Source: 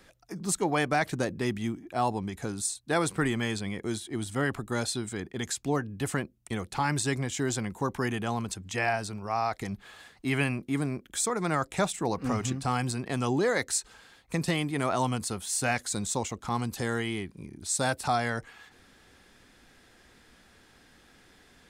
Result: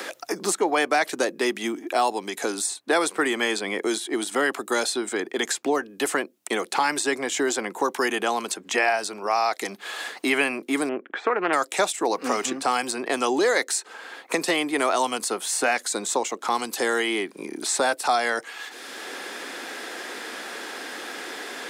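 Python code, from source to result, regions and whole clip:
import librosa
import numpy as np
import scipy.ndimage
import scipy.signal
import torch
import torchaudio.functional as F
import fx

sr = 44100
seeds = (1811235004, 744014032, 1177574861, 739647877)

y = fx.chain(x, sr, fx.lowpass(hz=2000.0, slope=24),
    fx.doppler_dist(depth_ms=0.21), at=(10.89, 11.53))
y = scipy.signal.sosfilt(scipy.signal.butter(4, 320.0, 'highpass', fs=sr, output='sos'), y)
y = fx.band_squash(y, sr, depth_pct=70)
y = F.gain(torch.from_numpy(y), 7.5).numpy()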